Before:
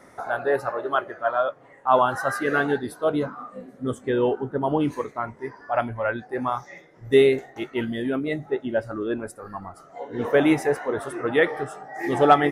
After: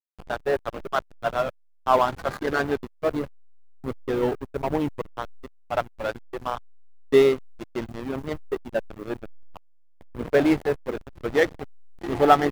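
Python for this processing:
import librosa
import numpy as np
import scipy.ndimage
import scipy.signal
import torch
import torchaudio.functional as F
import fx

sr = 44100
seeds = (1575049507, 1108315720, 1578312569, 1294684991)

y = fx.quant_float(x, sr, bits=4)
y = fx.backlash(y, sr, play_db=-19.0)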